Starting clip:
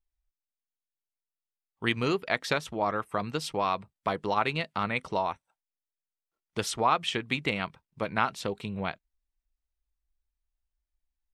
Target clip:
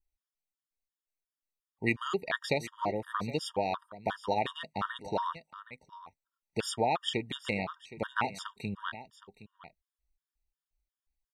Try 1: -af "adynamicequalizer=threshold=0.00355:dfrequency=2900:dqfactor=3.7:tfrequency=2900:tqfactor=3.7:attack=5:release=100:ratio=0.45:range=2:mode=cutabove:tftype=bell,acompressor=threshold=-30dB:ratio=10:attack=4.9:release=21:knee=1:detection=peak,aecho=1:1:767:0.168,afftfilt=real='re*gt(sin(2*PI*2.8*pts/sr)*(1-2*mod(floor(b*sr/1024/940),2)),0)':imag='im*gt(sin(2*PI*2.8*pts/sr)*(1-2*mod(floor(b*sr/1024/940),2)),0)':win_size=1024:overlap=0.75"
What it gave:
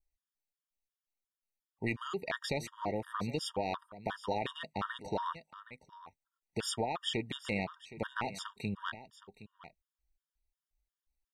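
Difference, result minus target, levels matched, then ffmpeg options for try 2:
compressor: peak gain reduction +11 dB
-af "adynamicequalizer=threshold=0.00355:dfrequency=2900:dqfactor=3.7:tfrequency=2900:tqfactor=3.7:attack=5:release=100:ratio=0.45:range=2:mode=cutabove:tftype=bell,aecho=1:1:767:0.168,afftfilt=real='re*gt(sin(2*PI*2.8*pts/sr)*(1-2*mod(floor(b*sr/1024/940),2)),0)':imag='im*gt(sin(2*PI*2.8*pts/sr)*(1-2*mod(floor(b*sr/1024/940),2)),0)':win_size=1024:overlap=0.75"

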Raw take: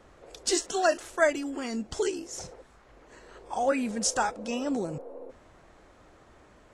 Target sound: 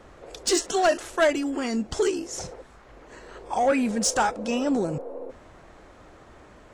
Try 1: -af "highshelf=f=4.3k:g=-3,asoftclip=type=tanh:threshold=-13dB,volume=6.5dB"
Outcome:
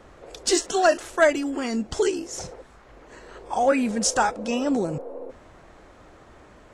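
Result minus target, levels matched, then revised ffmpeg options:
soft clip: distortion -10 dB
-af "highshelf=f=4.3k:g=-3,asoftclip=type=tanh:threshold=-20.5dB,volume=6.5dB"

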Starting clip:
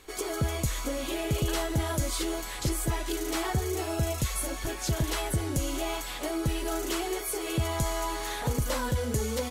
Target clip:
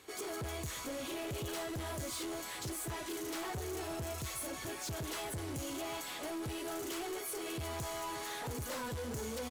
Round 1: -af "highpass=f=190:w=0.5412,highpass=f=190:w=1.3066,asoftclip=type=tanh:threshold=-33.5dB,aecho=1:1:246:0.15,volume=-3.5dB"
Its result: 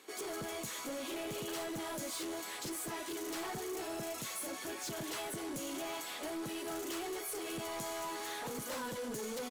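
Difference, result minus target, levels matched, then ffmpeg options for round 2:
125 Hz band -9.0 dB; echo 0.111 s early
-af "highpass=f=78:w=0.5412,highpass=f=78:w=1.3066,asoftclip=type=tanh:threshold=-33.5dB,aecho=1:1:357:0.15,volume=-3.5dB"

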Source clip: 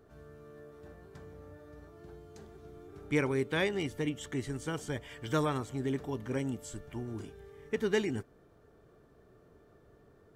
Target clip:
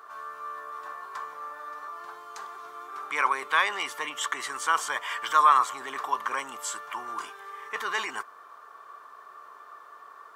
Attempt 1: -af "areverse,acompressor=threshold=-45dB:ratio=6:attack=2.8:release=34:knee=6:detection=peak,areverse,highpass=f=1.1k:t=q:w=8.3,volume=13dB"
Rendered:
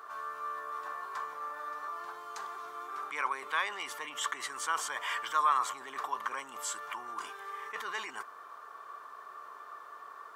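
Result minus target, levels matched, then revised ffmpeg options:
compressor: peak gain reduction +8.5 dB
-af "areverse,acompressor=threshold=-35dB:ratio=6:attack=2.8:release=34:knee=6:detection=peak,areverse,highpass=f=1.1k:t=q:w=8.3,volume=13dB"

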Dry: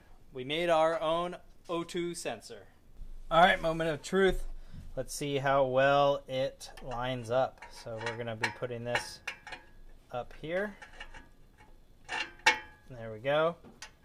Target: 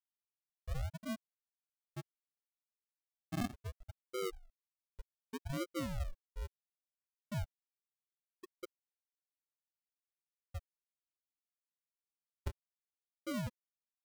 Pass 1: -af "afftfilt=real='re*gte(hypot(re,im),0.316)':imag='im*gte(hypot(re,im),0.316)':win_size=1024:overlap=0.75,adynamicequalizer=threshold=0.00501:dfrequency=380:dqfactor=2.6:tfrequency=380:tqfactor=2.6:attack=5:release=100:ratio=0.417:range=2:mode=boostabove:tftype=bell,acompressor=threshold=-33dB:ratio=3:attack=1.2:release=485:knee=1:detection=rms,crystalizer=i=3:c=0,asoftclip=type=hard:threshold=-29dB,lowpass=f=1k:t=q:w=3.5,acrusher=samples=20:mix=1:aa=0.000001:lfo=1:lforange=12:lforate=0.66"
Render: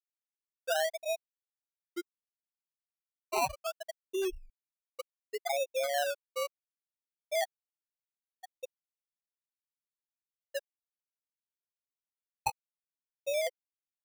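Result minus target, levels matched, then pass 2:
decimation with a swept rate: distortion -24 dB; compressor: peak gain reduction -7 dB
-af "afftfilt=real='re*gte(hypot(re,im),0.316)':imag='im*gte(hypot(re,im),0.316)':win_size=1024:overlap=0.75,adynamicequalizer=threshold=0.00501:dfrequency=380:dqfactor=2.6:tfrequency=380:tqfactor=2.6:attack=5:release=100:ratio=0.417:range=2:mode=boostabove:tftype=bell,acompressor=threshold=-43.5dB:ratio=3:attack=1.2:release=485:knee=1:detection=rms,crystalizer=i=3:c=0,asoftclip=type=hard:threshold=-29dB,lowpass=f=1k:t=q:w=3.5,acrusher=samples=71:mix=1:aa=0.000001:lfo=1:lforange=42.6:lforate=0.66"

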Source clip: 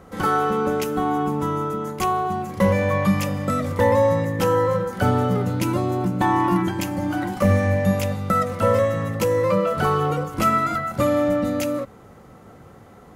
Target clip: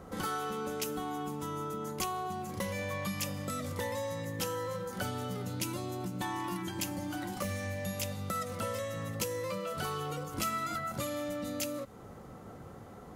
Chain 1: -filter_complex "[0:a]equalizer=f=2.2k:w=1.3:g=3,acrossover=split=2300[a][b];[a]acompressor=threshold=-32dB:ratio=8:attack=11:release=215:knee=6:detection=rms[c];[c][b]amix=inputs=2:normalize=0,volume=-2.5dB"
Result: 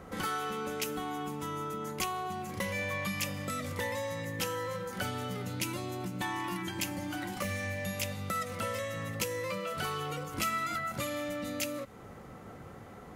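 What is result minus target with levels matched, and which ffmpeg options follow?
2000 Hz band +4.0 dB
-filter_complex "[0:a]equalizer=f=2.2k:w=1.3:g=-3.5,acrossover=split=2300[a][b];[a]acompressor=threshold=-32dB:ratio=8:attack=11:release=215:knee=6:detection=rms[c];[c][b]amix=inputs=2:normalize=0,volume=-2.5dB"

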